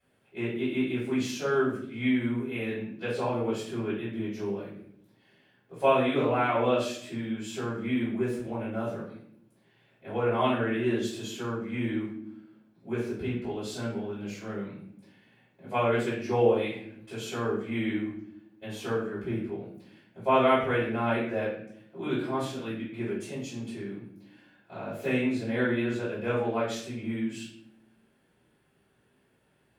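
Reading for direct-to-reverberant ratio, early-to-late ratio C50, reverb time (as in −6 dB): −12.5 dB, 3.0 dB, non-exponential decay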